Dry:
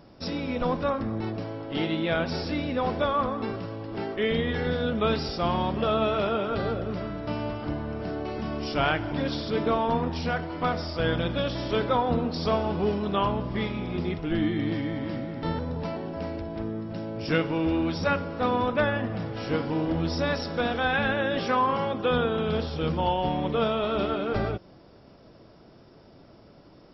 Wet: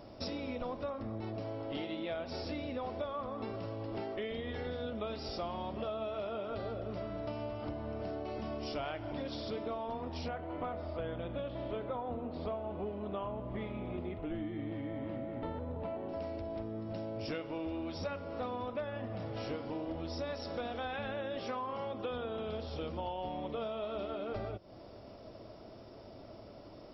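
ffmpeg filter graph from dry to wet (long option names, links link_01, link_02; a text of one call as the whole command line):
ffmpeg -i in.wav -filter_complex "[0:a]asettb=1/sr,asplit=3[link_01][link_02][link_03];[link_01]atrim=end=10.284[link_04];[link_02]atrim=start=10.28:end=16.09,asetpts=PTS-STARTPTS,afade=type=in:duration=0.004:curve=qsin,afade=type=out:start_time=5.806:duration=0.004:curve=qsin,lowpass=frequency=3600:width=0.5412,lowpass=frequency=3600:width=1.3066,aemphasis=mode=reproduction:type=75fm[link_05];[link_03]atrim=start=16.086[link_06];[link_04][link_05]acrossfade=duration=0.004:curve1=hsin:curve2=qsin[link_07];[link_07][link_06]acrossfade=duration=0.004:curve1=qsin:curve2=hsin,equalizer=frequency=100:width_type=o:width=0.33:gain=3,equalizer=frequency=160:width_type=o:width=0.33:gain=-9,equalizer=frequency=630:width_type=o:width=0.33:gain=7,equalizer=frequency=1600:width_type=o:width=0.33:gain=-5,acompressor=threshold=-37dB:ratio=6" out.wav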